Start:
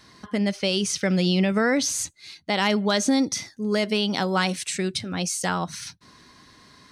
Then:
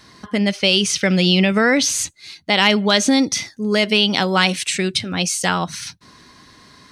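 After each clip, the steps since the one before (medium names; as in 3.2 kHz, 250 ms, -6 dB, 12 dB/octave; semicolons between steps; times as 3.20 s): dynamic bell 2.8 kHz, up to +7 dB, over -41 dBFS, Q 1.2; trim +5 dB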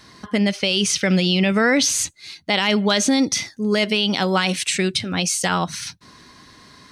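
peak limiter -8 dBFS, peak gain reduction 7 dB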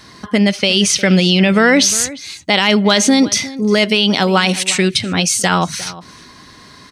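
echo from a far wall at 61 m, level -17 dB; trim +6 dB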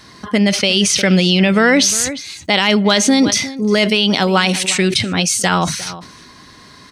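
decay stretcher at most 77 dB/s; trim -1 dB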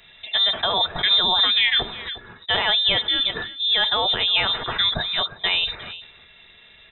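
comb of notches 250 Hz; frequency inversion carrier 3.8 kHz; trim -5.5 dB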